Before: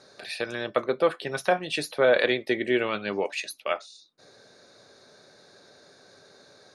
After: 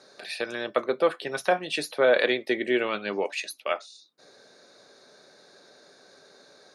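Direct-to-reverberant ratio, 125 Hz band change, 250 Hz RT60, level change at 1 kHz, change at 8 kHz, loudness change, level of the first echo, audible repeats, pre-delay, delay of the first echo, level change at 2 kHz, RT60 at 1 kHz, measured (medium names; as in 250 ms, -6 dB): no reverb, -6.0 dB, no reverb, 0.0 dB, 0.0 dB, 0.0 dB, no echo, no echo, no reverb, no echo, 0.0 dB, no reverb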